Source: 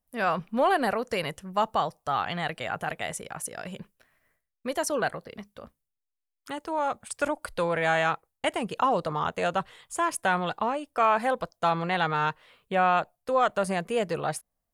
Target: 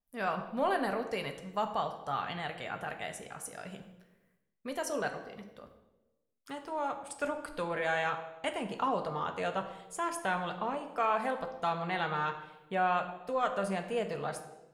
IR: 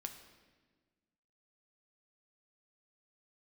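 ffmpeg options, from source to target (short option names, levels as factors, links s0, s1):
-filter_complex "[1:a]atrim=start_sample=2205,asetrate=66150,aresample=44100[s0];[0:a][s0]afir=irnorm=-1:irlink=0,adynamicequalizer=threshold=0.00282:dfrequency=5200:dqfactor=0.7:tfrequency=5200:tqfactor=0.7:attack=5:release=100:ratio=0.375:range=2:mode=cutabove:tftype=highshelf"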